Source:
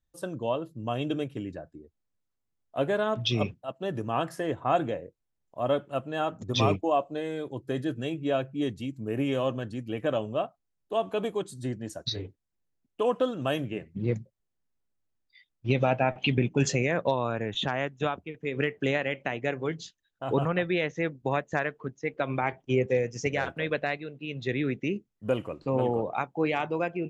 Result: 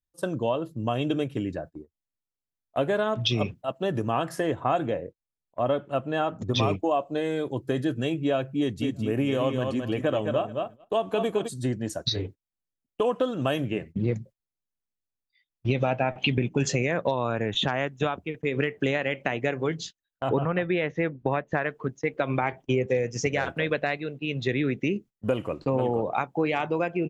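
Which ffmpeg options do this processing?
ffmpeg -i in.wav -filter_complex "[0:a]asettb=1/sr,asplit=3[link_01][link_02][link_03];[link_01]atrim=end=4.864[link_04];[link_02]atrim=start=4.86:end=6.63,asetpts=PTS-STARTPTS,afade=type=in:duration=0.004:curve=qsin,afade=type=out:start_time=1.766:duration=0.004:curve=qsin,lowpass=frequency=3800:poles=1[link_05];[link_03]atrim=start=6.626[link_06];[link_04][link_05]acrossfade=duration=0.004:curve1=hsin:curve2=qsin[link_07];[link_07][link_06]acrossfade=duration=0.004:curve1=qsin:curve2=hsin,asplit=3[link_08][link_09][link_10];[link_08]afade=type=out:start_time=8.81:duration=0.02[link_11];[link_09]aecho=1:1:213|426|639:0.447|0.0715|0.0114,afade=type=in:start_time=8.81:duration=0.02,afade=type=out:start_time=11.47:duration=0.02[link_12];[link_10]afade=type=in:start_time=11.47:duration=0.02[link_13];[link_11][link_12][link_13]amix=inputs=3:normalize=0,asettb=1/sr,asplit=3[link_14][link_15][link_16];[link_14]atrim=end=20.294[link_17];[link_15]atrim=start=20.29:end=21.66,asetpts=PTS-STARTPTS,afade=type=in:duration=0.004:curve=qsin,afade=type=out:start_time=1.366:duration=0.004:curve=qsin,lowpass=2800[link_18];[link_16]atrim=start=21.656[link_19];[link_17][link_18]acrossfade=duration=0.004:curve1=hsin:curve2=qsin[link_20];[link_20][link_19]acrossfade=duration=0.004:curve1=qsin:curve2=hsin,agate=range=-17dB:threshold=-46dB:ratio=16:detection=peak,acompressor=threshold=-29dB:ratio=3,volume=6.5dB" out.wav

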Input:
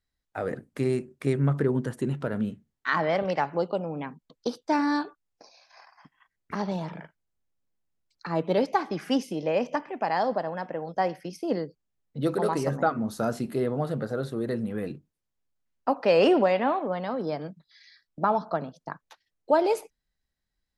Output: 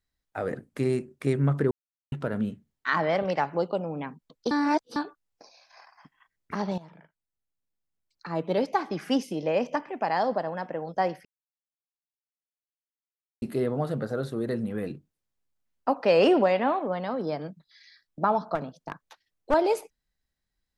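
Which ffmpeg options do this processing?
ffmpeg -i in.wav -filter_complex "[0:a]asettb=1/sr,asplit=3[link_01][link_02][link_03];[link_01]atrim=end=18.554[link_04];[link_02]atrim=start=18.55:end=19.54,asetpts=PTS-STARTPTS,afade=type=in:duration=0.004:curve=qsin,afade=type=out:start_time=0.986:duration=0.004:curve=qsin,aeval=exprs='clip(val(0),-1,0.0376)':channel_layout=same[link_05];[link_03]atrim=start=19.536[link_06];[link_04][link_05]acrossfade=duration=0.004:curve1=hsin:curve2=qsin[link_07];[link_07][link_06]acrossfade=duration=0.004:curve1=qsin:curve2=hsin,asplit=8[link_08][link_09][link_10][link_11][link_12][link_13][link_14][link_15];[link_08]atrim=end=1.71,asetpts=PTS-STARTPTS,afade=type=out:start_time=1.706:duration=0.004:curve=hsin[link_16];[link_09]atrim=start=1.71:end=2.12,asetpts=PTS-STARTPTS,volume=0[link_17];[link_10]atrim=start=2.12:end=4.512,asetpts=PTS-STARTPTS,afade=type=in:duration=0.004:curve=hsin[link_18];[link_11]atrim=start=4.508:end=4.962,asetpts=PTS-STARTPTS,areverse[link_19];[link_12]atrim=start=4.958:end=6.78,asetpts=PTS-STARTPTS,afade=type=out:start_time=1.818:duration=0.004:curve=hsin:silence=0.16788[link_20];[link_13]atrim=start=6.78:end=11.25,asetpts=PTS-STARTPTS,afade=type=in:duration=2.31:silence=0.16788,afade=type=out:start_time=4.466:duration=0.004:curve=hsin[link_21];[link_14]atrim=start=11.25:end=13.42,asetpts=PTS-STARTPTS,volume=0[link_22];[link_15]atrim=start=13.42,asetpts=PTS-STARTPTS,afade=type=in:duration=0.004:curve=hsin[link_23];[link_16][link_17][link_18]concat=n=3:v=0:a=1[link_24];[link_24][link_19]acrossfade=duration=0.004:curve1=hsin:curve2=hsin[link_25];[link_20][link_21][link_22][link_23]concat=n=4:v=0:a=1[link_26];[link_25][link_26]acrossfade=duration=0.004:curve1=hsin:curve2=hsin" out.wav

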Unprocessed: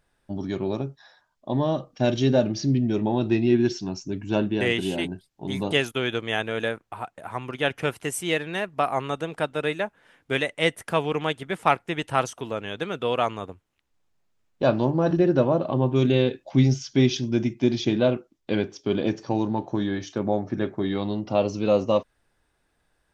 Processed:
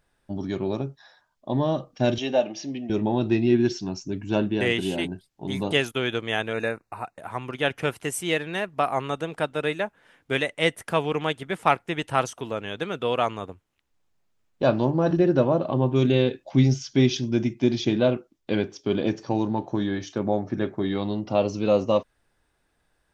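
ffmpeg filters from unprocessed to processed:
ffmpeg -i in.wav -filter_complex "[0:a]asettb=1/sr,asplit=3[link_01][link_02][link_03];[link_01]atrim=end=2.184[link_04];[link_02]atrim=start=2.18:end=2.9,asetpts=PTS-STARTPTS,afade=type=in:duration=0.004:curve=qsin,afade=type=out:start_time=0.716:duration=0.004:curve=qsin,highpass=400,equalizer=frequency=400:width_type=q:width=4:gain=-5,equalizer=frequency=750:width_type=q:width=4:gain=6,equalizer=frequency=1400:width_type=q:width=4:gain=-6,equalizer=frequency=2800:width_type=q:width=4:gain=6,equalizer=frequency=4500:width_type=q:width=4:gain=-9,lowpass=frequency=7000:width=0.5412,lowpass=frequency=7000:width=1.3066[link_05];[link_03]atrim=start=2.896[link_06];[link_04][link_05]acrossfade=duration=0.004:curve1=hsin:curve2=qsin[link_07];[link_07][link_06]acrossfade=duration=0.004:curve1=qsin:curve2=hsin,asettb=1/sr,asplit=3[link_08][link_09][link_10];[link_08]atrim=end=6.534[link_11];[link_09]atrim=start=6.53:end=7.18,asetpts=PTS-STARTPTS,afade=type=in:duration=0.004:curve=qsin,afade=type=out:start_time=0.646:duration=0.004:curve=qsin,asuperstop=centerf=3200:order=20:qfactor=4.2[link_12];[link_10]atrim=start=7.176[link_13];[link_11][link_12]acrossfade=duration=0.004:curve1=hsin:curve2=qsin[link_14];[link_14][link_13]acrossfade=duration=0.004:curve1=qsin:curve2=hsin" out.wav

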